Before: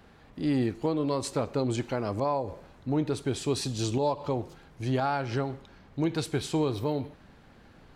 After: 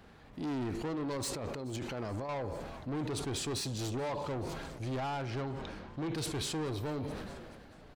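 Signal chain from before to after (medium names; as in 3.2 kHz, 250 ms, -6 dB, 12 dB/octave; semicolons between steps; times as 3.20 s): 1.17–2.29 s: compressor with a negative ratio -34 dBFS, ratio -1; 5.30–6.15 s: low-pass 5.4 kHz; saturation -31.5 dBFS, distortion -8 dB; frequency-shifting echo 429 ms, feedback 63%, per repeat +91 Hz, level -23.5 dB; decay stretcher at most 27 dB/s; trim -1.5 dB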